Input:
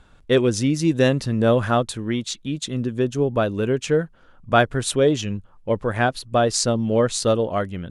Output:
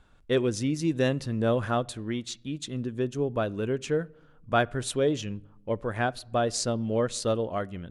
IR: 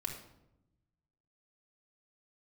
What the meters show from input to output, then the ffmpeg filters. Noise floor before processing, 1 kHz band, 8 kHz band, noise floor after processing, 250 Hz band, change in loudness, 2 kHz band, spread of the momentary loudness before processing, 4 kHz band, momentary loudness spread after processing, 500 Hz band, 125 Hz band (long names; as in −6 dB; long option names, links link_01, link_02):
−53 dBFS, −7.0 dB, −8.0 dB, −57 dBFS, −7.5 dB, −7.5 dB, −7.5 dB, 8 LU, −8.0 dB, 8 LU, −7.5 dB, −7.5 dB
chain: -filter_complex "[0:a]asplit=2[link_01][link_02];[1:a]atrim=start_sample=2205,lowpass=4000[link_03];[link_02][link_03]afir=irnorm=-1:irlink=0,volume=-19.5dB[link_04];[link_01][link_04]amix=inputs=2:normalize=0,volume=-8dB"